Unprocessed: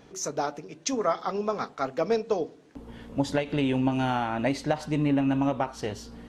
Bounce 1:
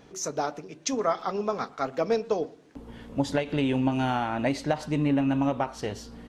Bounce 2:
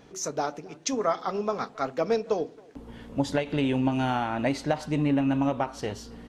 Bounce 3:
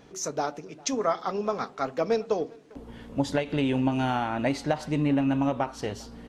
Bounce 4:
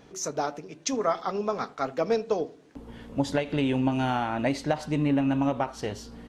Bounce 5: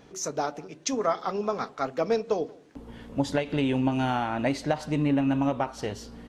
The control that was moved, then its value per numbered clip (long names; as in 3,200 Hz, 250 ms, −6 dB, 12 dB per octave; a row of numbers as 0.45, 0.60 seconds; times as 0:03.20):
far-end echo of a speakerphone, delay time: 120, 270, 400, 80, 180 milliseconds